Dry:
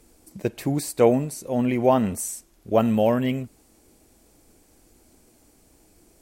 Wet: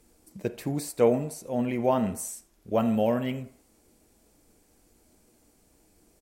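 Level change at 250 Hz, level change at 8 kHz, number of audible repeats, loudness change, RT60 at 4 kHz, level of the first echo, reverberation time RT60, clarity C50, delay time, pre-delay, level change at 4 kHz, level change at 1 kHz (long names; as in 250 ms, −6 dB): −5.0 dB, −5.5 dB, 1, −5.0 dB, 0.65 s, −21.5 dB, 0.60 s, 15.0 dB, 83 ms, 3 ms, −5.5 dB, −5.5 dB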